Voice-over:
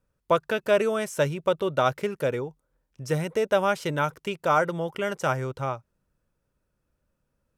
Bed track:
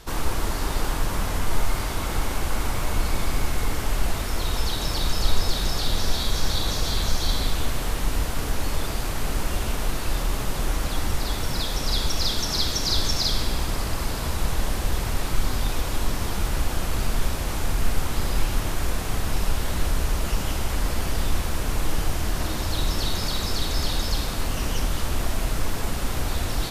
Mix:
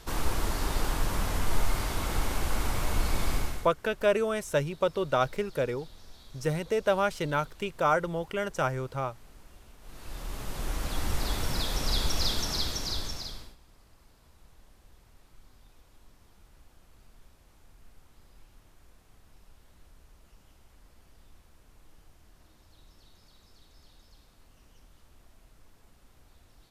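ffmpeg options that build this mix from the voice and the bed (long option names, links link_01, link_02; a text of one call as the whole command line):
ffmpeg -i stem1.wav -i stem2.wav -filter_complex "[0:a]adelay=3350,volume=-3dB[link_01];[1:a]volume=19.5dB,afade=type=out:start_time=3.33:duration=0.38:silence=0.0668344,afade=type=in:start_time=9.81:duration=1.45:silence=0.0668344,afade=type=out:start_time=12.27:duration=1.29:silence=0.0354813[link_02];[link_01][link_02]amix=inputs=2:normalize=0" out.wav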